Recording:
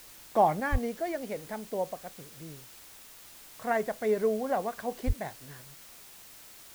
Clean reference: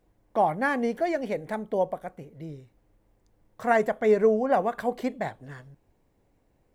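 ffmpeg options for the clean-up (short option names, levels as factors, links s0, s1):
-filter_complex "[0:a]asplit=3[s0][s1][s2];[s0]afade=t=out:st=0.71:d=0.02[s3];[s1]highpass=f=140:w=0.5412,highpass=f=140:w=1.3066,afade=t=in:st=0.71:d=0.02,afade=t=out:st=0.83:d=0.02[s4];[s2]afade=t=in:st=0.83:d=0.02[s5];[s3][s4][s5]amix=inputs=3:normalize=0,asplit=3[s6][s7][s8];[s6]afade=t=out:st=5.06:d=0.02[s9];[s7]highpass=f=140:w=0.5412,highpass=f=140:w=1.3066,afade=t=in:st=5.06:d=0.02,afade=t=out:st=5.18:d=0.02[s10];[s8]afade=t=in:st=5.18:d=0.02[s11];[s9][s10][s11]amix=inputs=3:normalize=0,afwtdn=0.0028,asetnsamples=n=441:p=0,asendcmd='0.6 volume volume 6.5dB',volume=1"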